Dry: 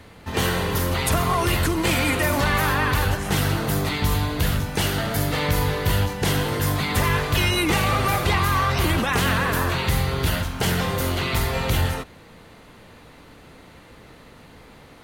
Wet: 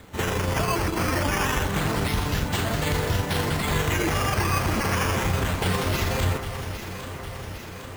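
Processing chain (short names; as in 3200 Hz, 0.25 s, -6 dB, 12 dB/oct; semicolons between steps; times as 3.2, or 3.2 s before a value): granular stretch 0.53×, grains 81 ms; limiter -15 dBFS, peak gain reduction 5.5 dB; decimation with a swept rate 8×, swing 100% 0.27 Hz; echo with dull and thin repeats by turns 0.403 s, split 1900 Hz, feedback 81%, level -9 dB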